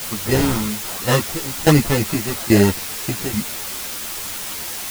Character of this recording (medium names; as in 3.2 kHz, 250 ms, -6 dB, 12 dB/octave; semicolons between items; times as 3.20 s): aliases and images of a low sample rate 2.3 kHz, jitter 0%; tremolo saw down 1.2 Hz, depth 90%; a quantiser's noise floor 6-bit, dither triangular; a shimmering, thickened sound